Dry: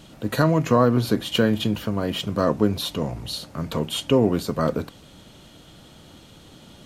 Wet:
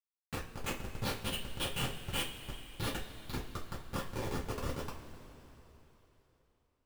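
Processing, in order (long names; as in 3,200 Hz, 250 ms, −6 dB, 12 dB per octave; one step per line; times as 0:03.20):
volume swells 340 ms
in parallel at 0 dB: brickwall limiter −22.5 dBFS, peak gain reduction 10.5 dB
on the sum: band-pass filter sweep 2,600 Hz → 910 Hz, 0:01.90–0:05.04
comparator with hysteresis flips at −33 dBFS
coupled-rooms reverb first 0.25 s, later 3.6 s, from −20 dB, DRR −6.5 dB
level +2 dB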